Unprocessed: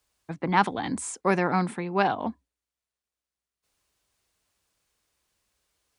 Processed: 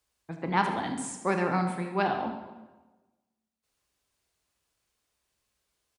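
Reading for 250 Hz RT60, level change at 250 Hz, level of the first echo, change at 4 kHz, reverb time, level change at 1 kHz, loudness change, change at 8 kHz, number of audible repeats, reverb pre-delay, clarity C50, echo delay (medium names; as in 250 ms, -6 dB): 1.3 s, -3.0 dB, -12.5 dB, -3.0 dB, 1.2 s, -3.0 dB, -3.0 dB, -3.5 dB, 1, 17 ms, 5.5 dB, 77 ms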